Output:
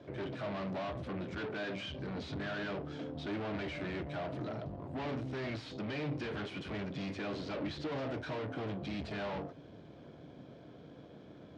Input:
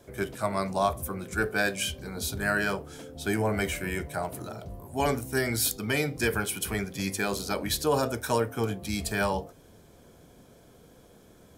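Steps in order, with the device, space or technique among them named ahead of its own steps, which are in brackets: guitar amplifier (valve stage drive 41 dB, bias 0.6; tone controls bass +3 dB, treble +3 dB; cabinet simulation 97–3900 Hz, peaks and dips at 140 Hz +5 dB, 300 Hz +8 dB, 610 Hz +5 dB); trim +1.5 dB

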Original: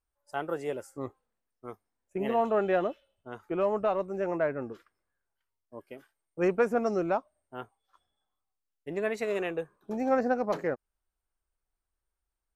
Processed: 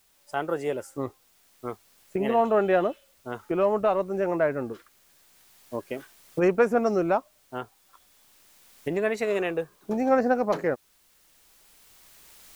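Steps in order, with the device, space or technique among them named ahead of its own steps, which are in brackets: cheap recorder with automatic gain (white noise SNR 37 dB; recorder AGC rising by 8 dB/s); trim +4.5 dB

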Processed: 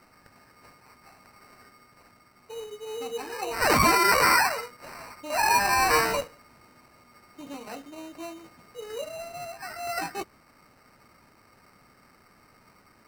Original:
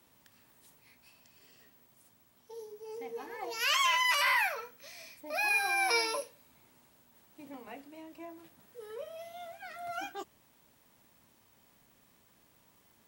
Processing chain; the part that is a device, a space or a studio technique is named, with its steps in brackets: crushed at another speed (playback speed 0.5×; sample-and-hold 26×; playback speed 2×); trim +7.5 dB

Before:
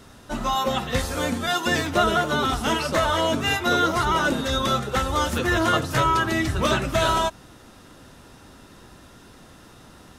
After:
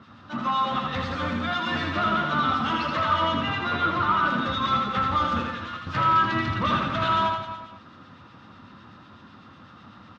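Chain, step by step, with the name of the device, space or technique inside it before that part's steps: high-pass 59 Hz; guitar amplifier with harmonic tremolo (harmonic tremolo 8 Hz, crossover 1.7 kHz; saturation -22.5 dBFS, distortion -12 dB; cabinet simulation 96–4100 Hz, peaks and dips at 98 Hz +8 dB, 210 Hz +6 dB, 420 Hz -9 dB, 650 Hz -4 dB, 1.2 kHz +10 dB); 3.36–4.26 s: low-pass 3.9 kHz 6 dB/octave; 5.44–5.87 s: amplifier tone stack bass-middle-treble 5-5-5; reverse bouncing-ball echo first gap 80 ms, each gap 1.1×, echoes 5

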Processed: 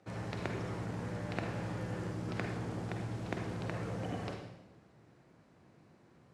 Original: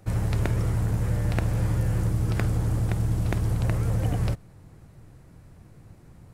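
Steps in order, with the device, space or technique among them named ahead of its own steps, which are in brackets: supermarket ceiling speaker (band-pass 220–5200 Hz; reverberation RT60 0.90 s, pre-delay 40 ms, DRR 3 dB); trim -7 dB

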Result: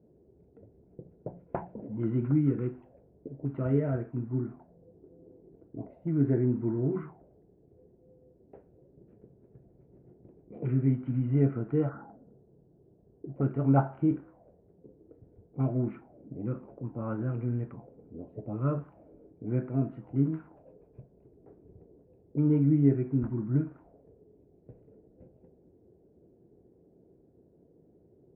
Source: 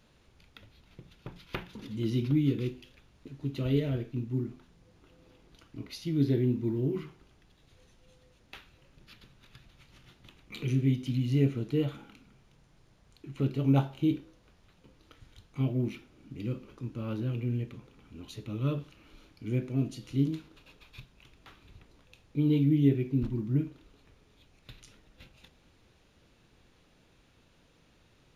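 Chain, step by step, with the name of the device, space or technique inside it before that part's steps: envelope filter bass rig (touch-sensitive low-pass 380–1300 Hz up, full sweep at -31 dBFS; cabinet simulation 70–2200 Hz, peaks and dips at 170 Hz +3 dB, 690 Hz +7 dB, 1.2 kHz -8 dB); 11.89–13.36 s: steep low-pass 1.9 kHz 96 dB/octave

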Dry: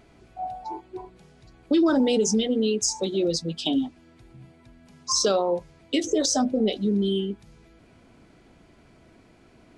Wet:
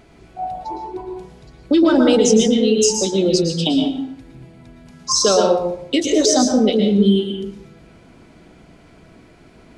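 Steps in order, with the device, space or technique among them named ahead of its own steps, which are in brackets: bathroom (reverberation RT60 0.60 s, pre-delay 107 ms, DRR 2.5 dB); trim +6 dB

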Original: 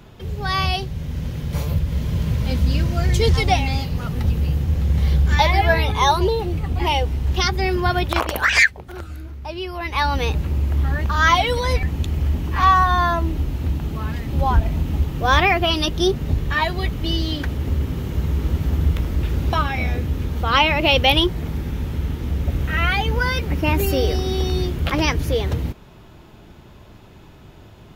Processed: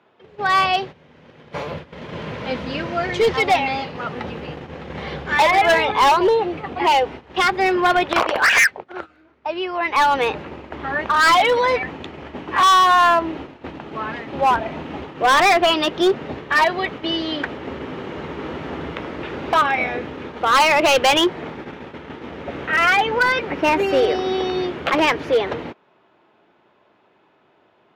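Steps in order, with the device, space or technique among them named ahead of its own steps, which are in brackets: walkie-talkie (band-pass 420–2400 Hz; hard clipper -19 dBFS, distortion -8 dB; gate -39 dBFS, range -14 dB); trim +8 dB

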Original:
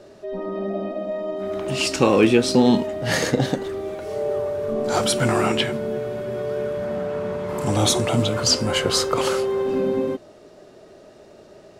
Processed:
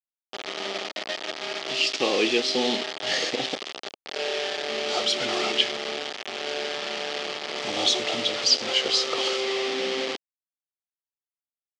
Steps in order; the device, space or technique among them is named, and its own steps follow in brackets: hand-held game console (bit crusher 4-bit; cabinet simulation 470–5700 Hz, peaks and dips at 570 Hz -4 dB, 1 kHz -10 dB, 1.5 kHz -8 dB, 3.2 kHz +6 dB, 4.7 kHz +3 dB); trim -2 dB

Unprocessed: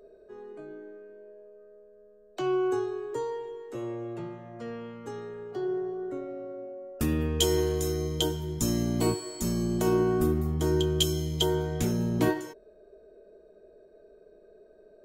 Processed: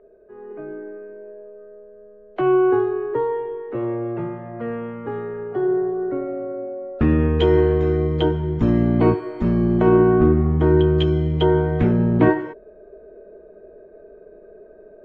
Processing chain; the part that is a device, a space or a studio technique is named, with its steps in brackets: action camera in a waterproof case (low-pass 2.2 kHz 24 dB/octave; level rider gain up to 9 dB; trim +1.5 dB; AAC 64 kbps 48 kHz)

